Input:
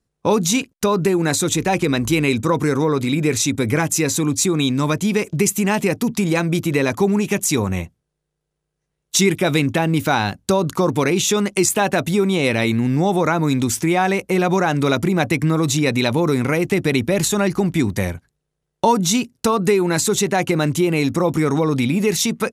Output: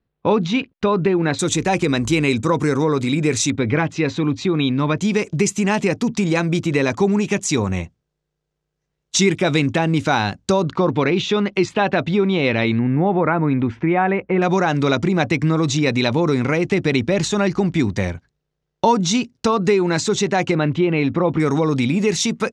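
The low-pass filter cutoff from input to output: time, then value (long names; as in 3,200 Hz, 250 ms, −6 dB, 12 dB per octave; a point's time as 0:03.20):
low-pass filter 24 dB per octave
3,600 Hz
from 0:01.39 8,400 Hz
from 0:03.50 3,800 Hz
from 0:04.97 7,200 Hz
from 0:10.63 4,100 Hz
from 0:12.79 2,300 Hz
from 0:14.42 6,300 Hz
from 0:20.55 3,400 Hz
from 0:21.40 7,400 Hz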